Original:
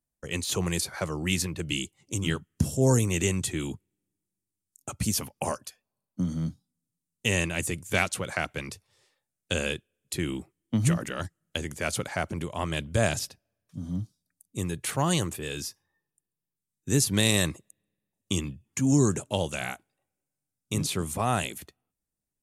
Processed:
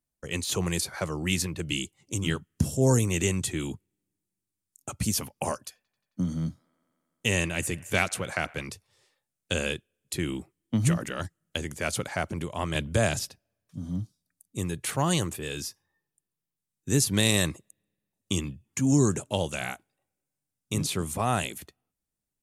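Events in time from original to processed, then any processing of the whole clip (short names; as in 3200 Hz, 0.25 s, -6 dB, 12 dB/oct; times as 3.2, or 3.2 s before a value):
5.62–8.63 band-limited delay 89 ms, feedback 81%, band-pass 1200 Hz, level -22.5 dB
12.75–13.21 three-band squash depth 40%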